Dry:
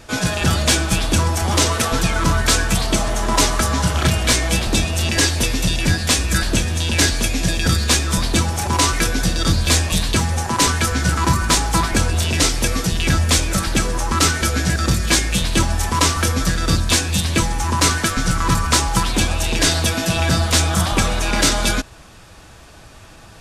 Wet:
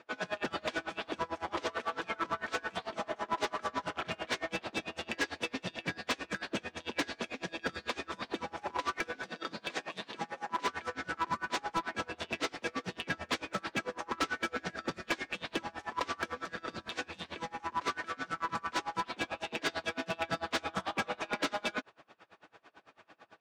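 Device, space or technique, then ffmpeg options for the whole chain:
helicopter radio: -filter_complex "[0:a]asettb=1/sr,asplit=3[link_01][link_02][link_03];[link_01]atrim=end=9.264[link_04];[link_02]atrim=start=9.26:end=10.65,asetpts=PTS-STARTPTS,afade=type=in:duration=0.004:curve=qsin,afade=type=out:start_time=1.386:duration=0.004:curve=qsin,highpass=frequency=130:width=0.5412,highpass=frequency=130:width=1.3066[link_05];[link_03]atrim=start=10.646[link_06];[link_04][link_05]acrossfade=duration=0.004:curve1=hsin:curve2=qsin[link_07];[link_07][link_06]acrossfade=duration=0.004:curve1=qsin:curve2=hsin,highpass=350,lowpass=2600,aeval=exprs='val(0)*pow(10,-28*(0.5-0.5*cos(2*PI*9*n/s))/20)':channel_layout=same,asoftclip=type=hard:threshold=-18.5dB,volume=-6dB"

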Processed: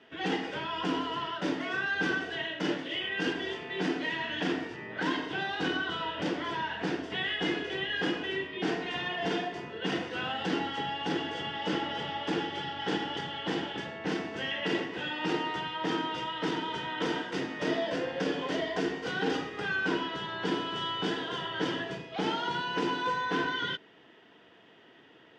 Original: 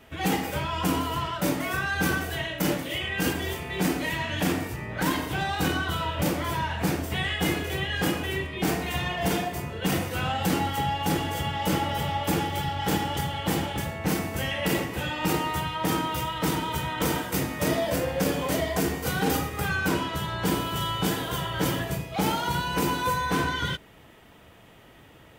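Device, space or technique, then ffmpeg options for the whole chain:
phone earpiece: -af "highpass=340,equalizer=frequency=570:width_type=q:width=4:gain=-9,equalizer=frequency=820:width_type=q:width=4:gain=-7,equalizer=frequency=1200:width_type=q:width=4:gain=-9,equalizer=frequency=2300:width_type=q:width=4:gain=-9,equalizer=frequency=4100:width_type=q:width=4:gain=-7,lowpass=frequency=4300:width=0.5412,lowpass=frequency=4300:width=1.3066,volume=1.5dB"

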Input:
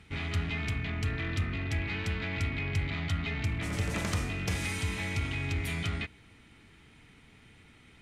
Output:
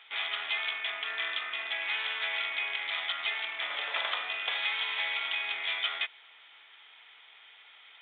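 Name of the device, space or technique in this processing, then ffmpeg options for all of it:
musical greeting card: -af "aresample=8000,aresample=44100,highpass=frequency=690:width=0.5412,highpass=frequency=690:width=1.3066,equalizer=frequency=3400:width_type=o:width=0.21:gain=12,volume=4.5dB"

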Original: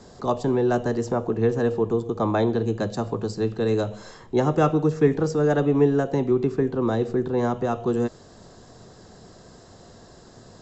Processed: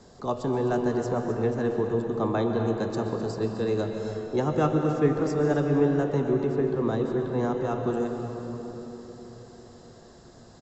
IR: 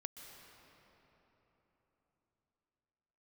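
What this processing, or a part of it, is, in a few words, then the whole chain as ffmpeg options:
cave: -filter_complex "[0:a]aecho=1:1:258:0.237[link_01];[1:a]atrim=start_sample=2205[link_02];[link_01][link_02]afir=irnorm=-1:irlink=0"

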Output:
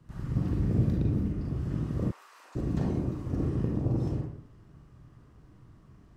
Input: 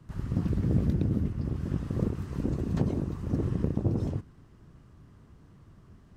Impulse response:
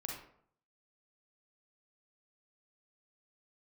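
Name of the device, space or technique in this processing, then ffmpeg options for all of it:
bathroom: -filter_complex "[1:a]atrim=start_sample=2205[link_01];[0:a][link_01]afir=irnorm=-1:irlink=0,asplit=3[link_02][link_03][link_04];[link_02]afade=type=out:start_time=2.1:duration=0.02[link_05];[link_03]highpass=frequency=880:width=0.5412,highpass=frequency=880:width=1.3066,afade=type=in:start_time=2.1:duration=0.02,afade=type=out:start_time=2.55:duration=0.02[link_06];[link_04]afade=type=in:start_time=2.55:duration=0.02[link_07];[link_05][link_06][link_07]amix=inputs=3:normalize=0"

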